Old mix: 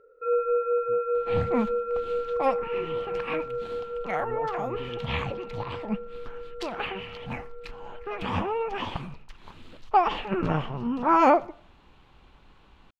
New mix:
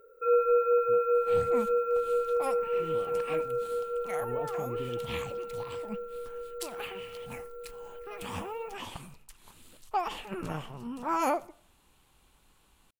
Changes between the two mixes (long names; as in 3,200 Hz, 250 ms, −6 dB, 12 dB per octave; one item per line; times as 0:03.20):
second sound −10.5 dB
master: remove high-frequency loss of the air 240 metres